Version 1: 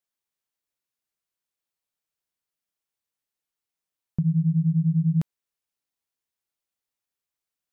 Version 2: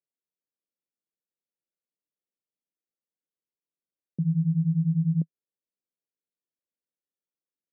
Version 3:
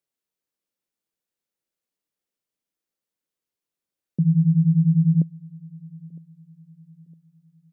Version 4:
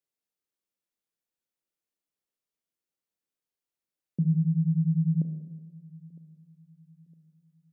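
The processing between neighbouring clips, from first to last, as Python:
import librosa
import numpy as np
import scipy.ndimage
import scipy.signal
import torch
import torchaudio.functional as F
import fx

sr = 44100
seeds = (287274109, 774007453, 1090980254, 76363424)

y1 = scipy.signal.sosfilt(scipy.signal.ellip(3, 1.0, 40, [160.0, 560.0], 'bandpass', fs=sr, output='sos'), x)
y1 = F.gain(torch.from_numpy(y1), -1.5).numpy()
y2 = fx.echo_feedback(y1, sr, ms=959, feedback_pct=38, wet_db=-22.5)
y2 = F.gain(torch.from_numpy(y2), 6.5).numpy()
y3 = fx.rev_schroeder(y2, sr, rt60_s=1.4, comb_ms=25, drr_db=6.5)
y3 = F.gain(torch.from_numpy(y3), -5.5).numpy()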